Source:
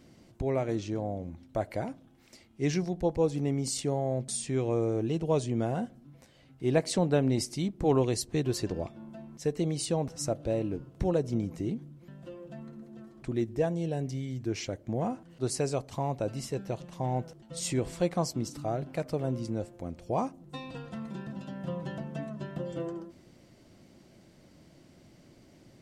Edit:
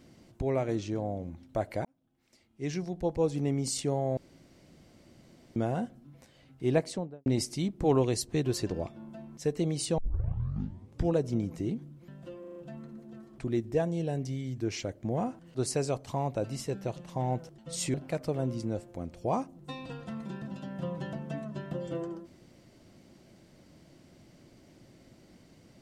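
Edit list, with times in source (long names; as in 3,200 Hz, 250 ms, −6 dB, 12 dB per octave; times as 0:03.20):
0:01.85–0:03.42: fade in
0:04.17–0:05.56: fill with room tone
0:06.67–0:07.26: fade out and dull
0:09.98: tape start 1.18 s
0:12.40: stutter 0.04 s, 5 plays
0:17.78–0:18.79: remove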